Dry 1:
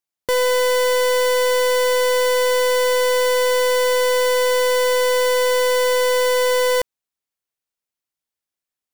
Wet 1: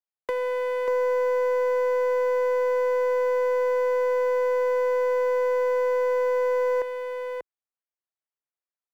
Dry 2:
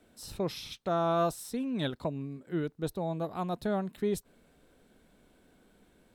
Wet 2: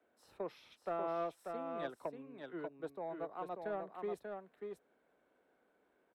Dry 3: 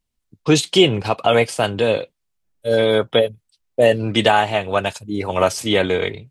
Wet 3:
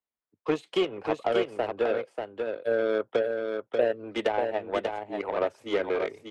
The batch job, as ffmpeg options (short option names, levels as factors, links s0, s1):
-filter_complex "[0:a]highpass=51,acrossover=split=350 2200:gain=0.1 1 0.126[s0][s1][s2];[s0][s1][s2]amix=inputs=3:normalize=0,acrossover=split=190|490[s3][s4][s5];[s3]acompressor=threshold=0.00501:ratio=4[s6];[s4]acompressor=threshold=0.0562:ratio=4[s7];[s5]acompressor=threshold=0.02:ratio=4[s8];[s6][s7][s8]amix=inputs=3:normalize=0,aeval=exprs='0.237*(cos(1*acos(clip(val(0)/0.237,-1,1)))-cos(1*PI/2))+0.0188*(cos(7*acos(clip(val(0)/0.237,-1,1)))-cos(7*PI/2))':c=same,asplit=2[s9][s10];[s10]aecho=0:1:589:0.562[s11];[s9][s11]amix=inputs=2:normalize=0"